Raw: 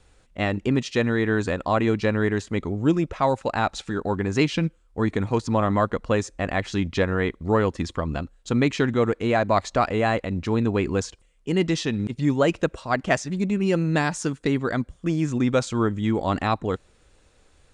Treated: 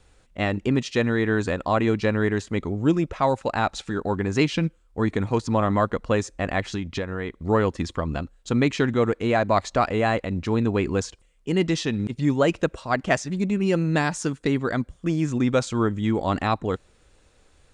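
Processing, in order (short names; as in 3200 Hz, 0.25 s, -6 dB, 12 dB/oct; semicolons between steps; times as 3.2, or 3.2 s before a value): 6.6–7.44 compressor 6:1, threshold -25 dBFS, peak gain reduction 8.5 dB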